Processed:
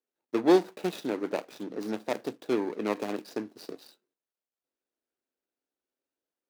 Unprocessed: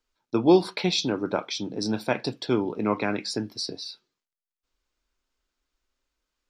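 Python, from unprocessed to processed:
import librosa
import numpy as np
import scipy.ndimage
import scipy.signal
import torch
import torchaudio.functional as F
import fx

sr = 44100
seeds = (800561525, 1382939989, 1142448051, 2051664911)

y = scipy.signal.medfilt(x, 41)
y = scipy.signal.sosfilt(scipy.signal.butter(2, 320.0, 'highpass', fs=sr, output='sos'), y)
y = fx.high_shelf(y, sr, hz=5600.0, db=4.0)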